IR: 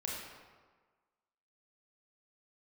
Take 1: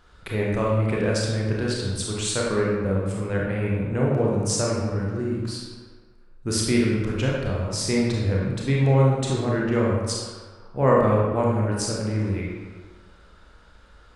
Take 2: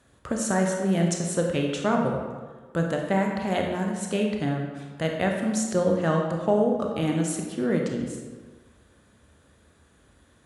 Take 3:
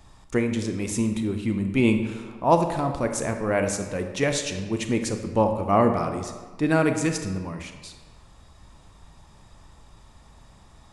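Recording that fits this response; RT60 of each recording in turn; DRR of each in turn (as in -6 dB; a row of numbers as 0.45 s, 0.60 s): 1; 1.5 s, 1.4 s, 1.4 s; -4.0 dB, 1.0 dB, 5.5 dB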